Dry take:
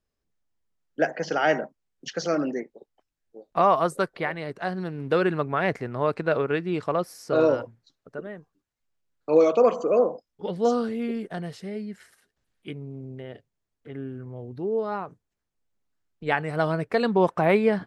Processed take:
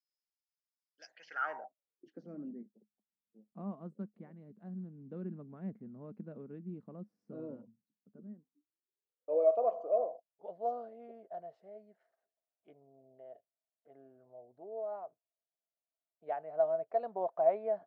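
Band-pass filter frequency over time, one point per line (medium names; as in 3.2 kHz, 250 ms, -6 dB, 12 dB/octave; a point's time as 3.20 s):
band-pass filter, Q 11
1.06 s 5.1 kHz
1.48 s 1.1 kHz
2.30 s 210 Hz
8.26 s 210 Hz
9.50 s 660 Hz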